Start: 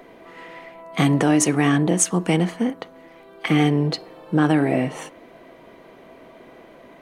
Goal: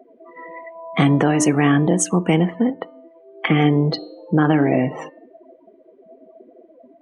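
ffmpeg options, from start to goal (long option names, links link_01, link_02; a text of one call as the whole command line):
ffmpeg -i in.wav -filter_complex "[0:a]afftdn=noise_reduction=32:noise_floor=-34,highshelf=frequency=6200:gain=-9.5,bandreject=frequency=301.1:width_type=h:width=4,bandreject=frequency=602.2:width_type=h:width=4,bandreject=frequency=903.3:width_type=h:width=4,bandreject=frequency=1204.4:width_type=h:width=4,bandreject=frequency=1505.5:width_type=h:width=4,bandreject=frequency=1806.6:width_type=h:width=4,bandreject=frequency=2107.7:width_type=h:width=4,bandreject=frequency=2408.8:width_type=h:width=4,bandreject=frequency=2709.9:width_type=h:width=4,bandreject=frequency=3011:width_type=h:width=4,bandreject=frequency=3312.1:width_type=h:width=4,bandreject=frequency=3613.2:width_type=h:width=4,bandreject=frequency=3914.3:width_type=h:width=4,bandreject=frequency=4215.4:width_type=h:width=4,asplit=2[link_01][link_02];[link_02]acompressor=threshold=-26dB:ratio=6,volume=2dB[link_03];[link_01][link_03]amix=inputs=2:normalize=0" out.wav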